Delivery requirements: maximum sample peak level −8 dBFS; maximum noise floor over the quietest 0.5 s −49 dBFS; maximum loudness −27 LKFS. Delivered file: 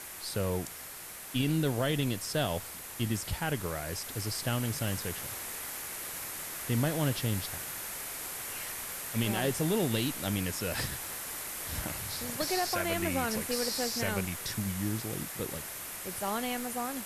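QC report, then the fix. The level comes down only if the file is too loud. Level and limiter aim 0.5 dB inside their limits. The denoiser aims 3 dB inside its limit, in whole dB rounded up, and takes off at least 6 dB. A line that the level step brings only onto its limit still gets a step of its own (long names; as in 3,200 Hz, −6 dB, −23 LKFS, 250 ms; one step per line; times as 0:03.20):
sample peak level −18.5 dBFS: in spec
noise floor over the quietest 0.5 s −45 dBFS: out of spec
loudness −33.0 LKFS: in spec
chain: broadband denoise 7 dB, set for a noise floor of −45 dBFS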